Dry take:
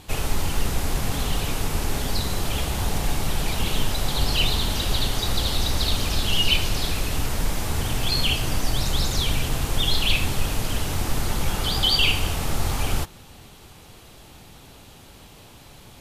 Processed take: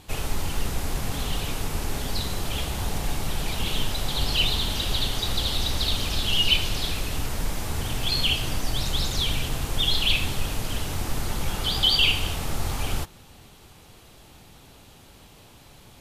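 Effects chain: dynamic bell 3.3 kHz, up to +5 dB, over -36 dBFS, Q 2; trim -3.5 dB

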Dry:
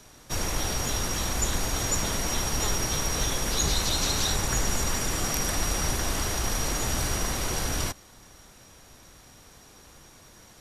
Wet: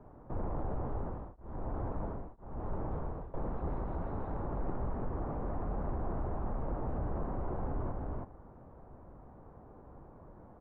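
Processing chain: integer overflow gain 18 dB; delay 324 ms -8 dB; saturation -21.5 dBFS, distortion -17 dB; peak limiter -27.5 dBFS, peak gain reduction 5.5 dB; low-pass 1 kHz 24 dB/octave; 0.87–3.34 s: tremolo of two beating tones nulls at 1 Hz; trim +1 dB

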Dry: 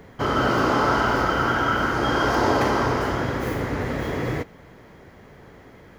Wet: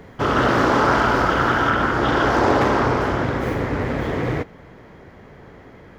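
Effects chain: treble shelf 5 kHz -3 dB, from 1.70 s -9 dB; loudspeaker Doppler distortion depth 0.33 ms; trim +3.5 dB

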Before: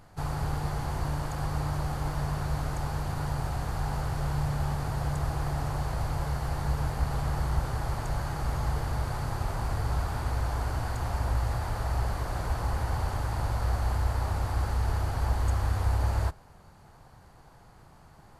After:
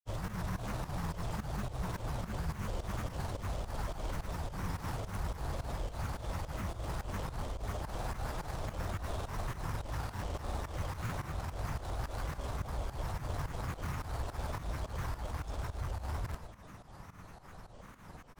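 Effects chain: in parallel at -9.5 dB: companded quantiser 2-bit; on the sum: reverse echo 155 ms -4.5 dB; reverse; compression 6:1, threshold -36 dBFS, peak gain reduction 16 dB; reverse; Schroeder reverb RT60 0.33 s, combs from 30 ms, DRR 8 dB; granulator, pitch spread up and down by 7 st; volume shaper 107 bpm, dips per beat 2, -14 dB, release 149 ms; trim +2.5 dB

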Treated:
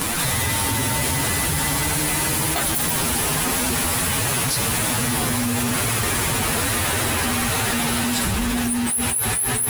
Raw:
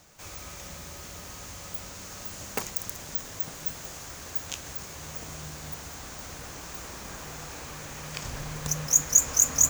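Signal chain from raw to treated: frequency-domain pitch shifter +8 st; level flattener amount 100%; trim -1.5 dB

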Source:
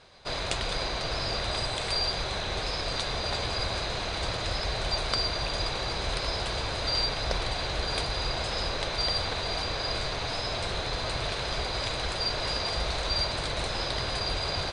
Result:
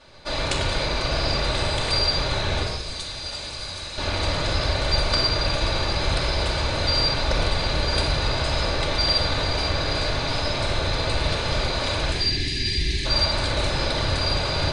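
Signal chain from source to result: 2.63–3.98 s: pre-emphasis filter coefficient 0.8; 12.12–13.05 s: time-frequency box 420–1600 Hz -28 dB; reverberation RT60 0.95 s, pre-delay 3 ms, DRR -5 dB

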